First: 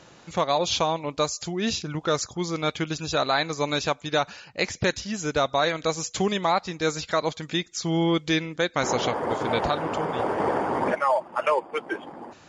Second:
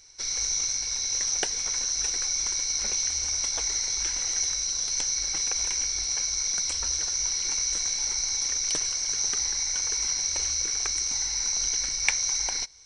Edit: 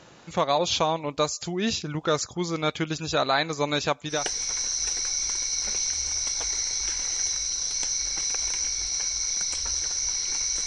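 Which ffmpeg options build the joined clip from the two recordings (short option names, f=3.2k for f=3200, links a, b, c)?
-filter_complex "[0:a]apad=whole_dur=10.66,atrim=end=10.66,atrim=end=4.3,asetpts=PTS-STARTPTS[a];[1:a]atrim=start=1.23:end=7.83,asetpts=PTS-STARTPTS[b];[a][b]acrossfade=d=0.24:c1=tri:c2=tri"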